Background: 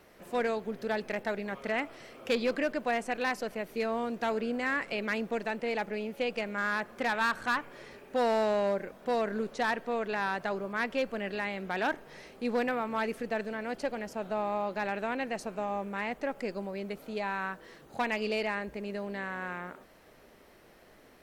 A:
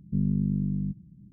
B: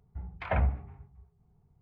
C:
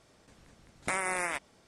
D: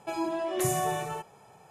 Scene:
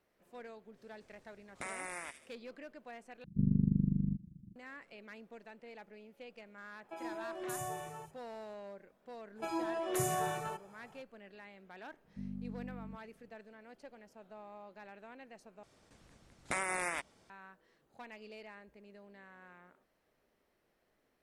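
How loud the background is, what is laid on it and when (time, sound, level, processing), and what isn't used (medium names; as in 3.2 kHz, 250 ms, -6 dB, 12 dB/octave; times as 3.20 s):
background -19.5 dB
0.73 s: add C -11.5 dB, fades 0.05 s + feedback echo behind a high-pass 76 ms, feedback 39%, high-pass 3.1 kHz, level -4 dB
3.24 s: replace with A -0.5 dB + AM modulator 25 Hz, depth 70%
6.84 s: add D -12 dB + three bands offset in time mids, highs, lows 50/120 ms, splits 160/3600 Hz
9.35 s: add D -6 dB, fades 0.05 s + peaking EQ 1.4 kHz +6 dB 0.38 oct
12.04 s: add A -17.5 dB + comb 3.8 ms, depth 54%
15.63 s: replace with C -4 dB
not used: B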